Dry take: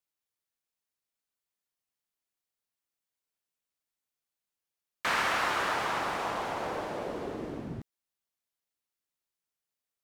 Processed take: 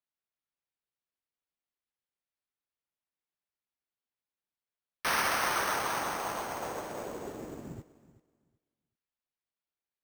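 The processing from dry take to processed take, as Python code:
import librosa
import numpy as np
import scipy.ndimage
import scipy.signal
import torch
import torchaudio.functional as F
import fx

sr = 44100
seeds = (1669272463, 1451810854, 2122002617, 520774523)

y = fx.echo_feedback(x, sr, ms=379, feedback_pct=20, wet_db=-12.0)
y = np.repeat(y[::6], 6)[:len(y)]
y = fx.upward_expand(y, sr, threshold_db=-50.0, expansion=1.5)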